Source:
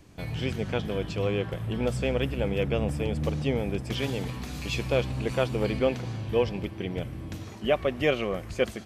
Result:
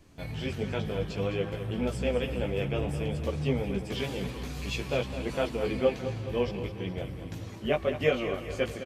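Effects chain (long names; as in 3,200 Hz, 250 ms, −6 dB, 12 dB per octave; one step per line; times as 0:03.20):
multi-voice chorus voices 6, 0.52 Hz, delay 16 ms, depth 4.9 ms
repeating echo 209 ms, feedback 56%, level −11 dB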